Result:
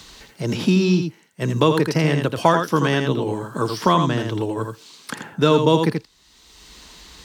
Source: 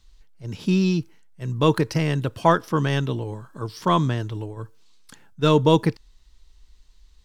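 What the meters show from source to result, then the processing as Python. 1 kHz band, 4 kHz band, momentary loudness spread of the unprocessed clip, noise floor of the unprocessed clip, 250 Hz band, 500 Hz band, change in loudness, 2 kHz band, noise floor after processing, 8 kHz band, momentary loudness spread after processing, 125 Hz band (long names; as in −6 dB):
+3.0 dB, +4.5 dB, 16 LU, −55 dBFS, +3.0 dB, +3.5 dB, +2.5 dB, +5.0 dB, −55 dBFS, +6.0 dB, 13 LU, +1.5 dB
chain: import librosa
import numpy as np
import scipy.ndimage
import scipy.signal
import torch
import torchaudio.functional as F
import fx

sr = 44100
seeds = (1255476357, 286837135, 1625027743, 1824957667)

p1 = scipy.signal.sosfilt(scipy.signal.butter(2, 160.0, 'highpass', fs=sr, output='sos'), x)
p2 = p1 + fx.echo_single(p1, sr, ms=82, db=-6.5, dry=0)
p3 = fx.band_squash(p2, sr, depth_pct=70)
y = p3 * 10.0 ** (4.0 / 20.0)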